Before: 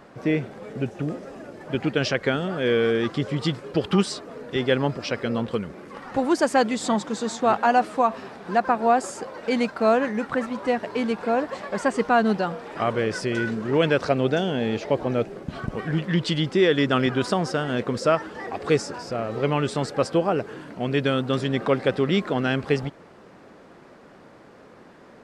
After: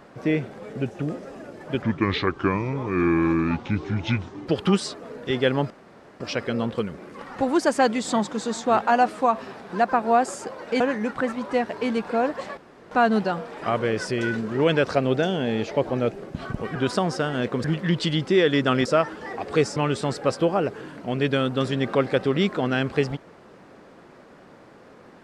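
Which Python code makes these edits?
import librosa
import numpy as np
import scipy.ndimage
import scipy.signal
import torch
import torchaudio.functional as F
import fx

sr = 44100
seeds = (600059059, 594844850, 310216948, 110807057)

y = fx.edit(x, sr, fx.speed_span(start_s=1.82, length_s=1.91, speed=0.72),
    fx.insert_room_tone(at_s=4.96, length_s=0.5),
    fx.cut(start_s=9.56, length_s=0.38),
    fx.room_tone_fill(start_s=11.71, length_s=0.34),
    fx.move(start_s=17.1, length_s=0.89, to_s=15.89),
    fx.cut(start_s=18.9, length_s=0.59), tone=tone)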